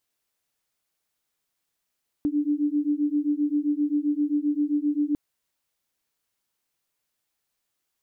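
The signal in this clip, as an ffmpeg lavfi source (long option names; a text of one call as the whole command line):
ffmpeg -f lavfi -i "aevalsrc='0.0596*(sin(2*PI*290*t)+sin(2*PI*297.6*t))':duration=2.9:sample_rate=44100" out.wav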